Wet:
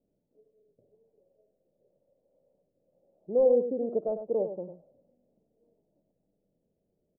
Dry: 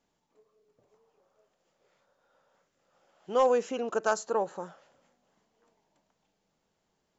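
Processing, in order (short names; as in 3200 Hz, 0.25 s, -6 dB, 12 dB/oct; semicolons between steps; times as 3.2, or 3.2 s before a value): elliptic low-pass 590 Hz, stop band 80 dB; on a send: echo 98 ms -9 dB; on the sum: gain +2.5 dB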